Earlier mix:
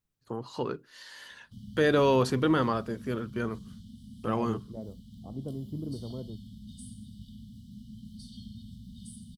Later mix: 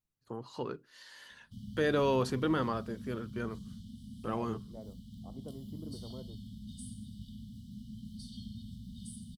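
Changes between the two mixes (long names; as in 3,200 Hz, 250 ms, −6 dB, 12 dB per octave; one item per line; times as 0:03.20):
first voice −5.5 dB
second voice: add low-shelf EQ 480 Hz −12 dB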